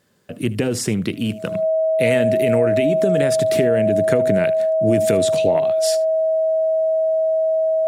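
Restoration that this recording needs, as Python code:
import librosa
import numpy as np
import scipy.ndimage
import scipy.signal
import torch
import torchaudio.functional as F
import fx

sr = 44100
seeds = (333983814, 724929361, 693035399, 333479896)

y = fx.notch(x, sr, hz=640.0, q=30.0)
y = fx.fix_echo_inverse(y, sr, delay_ms=76, level_db=-20.5)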